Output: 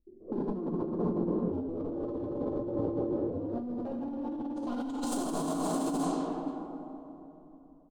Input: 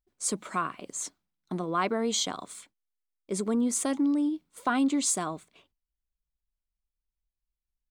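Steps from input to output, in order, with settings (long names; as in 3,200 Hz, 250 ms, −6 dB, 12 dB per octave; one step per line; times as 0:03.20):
0:00.72–0:03.53: sub-harmonics by changed cycles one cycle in 2, inverted
low-pass filter sweep 340 Hz → 10,000 Hz, 0:03.58–0:04.79
hard clipping −28 dBFS, distortion −7 dB
graphic EQ with 10 bands 125 Hz −4 dB, 250 Hz +5 dB, 500 Hz +10 dB, 1,000 Hz +4 dB, 2,000 Hz −11 dB, 4,000 Hz +3 dB, 8,000 Hz −6 dB
repeating echo 162 ms, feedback 57%, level −11 dB
dense smooth reverb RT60 3.5 s, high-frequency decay 0.95×, DRR −6 dB
low-pass that shuts in the quiet parts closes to 780 Hz, open at −26 dBFS
brickwall limiter −23.5 dBFS, peak gain reduction 16 dB
compressor whose output falls as the input rises −33 dBFS, ratio −0.5
low-shelf EQ 230 Hz +10 dB
level −2 dB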